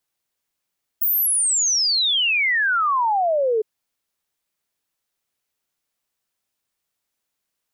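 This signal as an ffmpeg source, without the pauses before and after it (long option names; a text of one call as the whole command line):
ffmpeg -f lavfi -i "aevalsrc='0.15*clip(min(t,2.61-t)/0.01,0,1)*sin(2*PI*16000*2.61/log(420/16000)*(exp(log(420/16000)*t/2.61)-1))':duration=2.61:sample_rate=44100" out.wav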